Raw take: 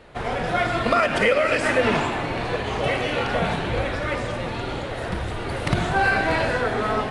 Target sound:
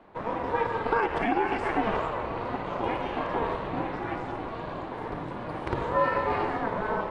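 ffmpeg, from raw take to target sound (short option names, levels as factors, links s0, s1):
-af "lowpass=f=1800:p=1,equalizer=f=800:t=o:w=1:g=9,aeval=exprs='val(0)*sin(2*PI*230*n/s)':c=same,volume=0.473"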